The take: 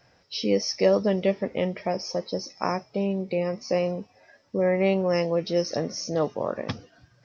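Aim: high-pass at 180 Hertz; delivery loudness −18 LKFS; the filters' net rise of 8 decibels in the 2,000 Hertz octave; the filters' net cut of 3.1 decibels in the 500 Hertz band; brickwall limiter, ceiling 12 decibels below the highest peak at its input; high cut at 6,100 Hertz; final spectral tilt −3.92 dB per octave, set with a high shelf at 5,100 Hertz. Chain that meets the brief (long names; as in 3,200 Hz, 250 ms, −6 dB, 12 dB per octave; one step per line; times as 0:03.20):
high-pass filter 180 Hz
low-pass filter 6,100 Hz
parametric band 500 Hz −4 dB
parametric band 2,000 Hz +8.5 dB
high-shelf EQ 5,100 Hz +6.5 dB
level +12.5 dB
brickwall limiter −6 dBFS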